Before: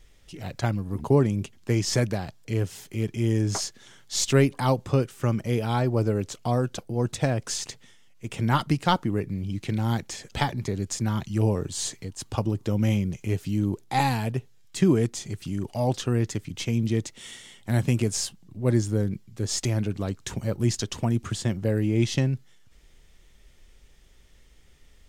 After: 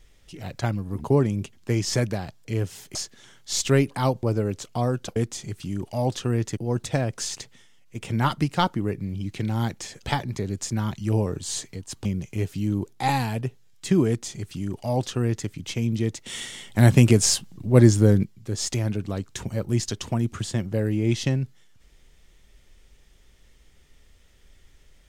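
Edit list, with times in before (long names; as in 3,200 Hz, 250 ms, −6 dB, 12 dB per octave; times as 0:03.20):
0:02.95–0:03.58: remove
0:04.86–0:05.93: remove
0:12.34–0:12.96: remove
0:14.98–0:16.39: duplicate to 0:06.86
0:17.17–0:19.15: clip gain +8 dB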